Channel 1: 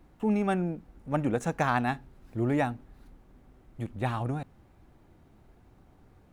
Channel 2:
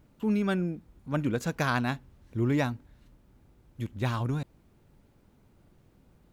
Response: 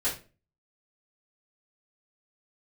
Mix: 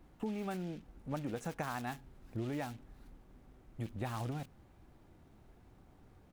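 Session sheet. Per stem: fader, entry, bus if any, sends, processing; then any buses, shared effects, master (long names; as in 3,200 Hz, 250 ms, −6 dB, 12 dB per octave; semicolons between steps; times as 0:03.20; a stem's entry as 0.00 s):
−3.0 dB, 0.00 s, no send, no processing
−12.5 dB, 27 ms, no send, low-shelf EQ 430 Hz −10 dB; short delay modulated by noise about 2,500 Hz, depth 0.34 ms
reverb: not used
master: downward compressor 10 to 1, threshold −35 dBFS, peak gain reduction 11 dB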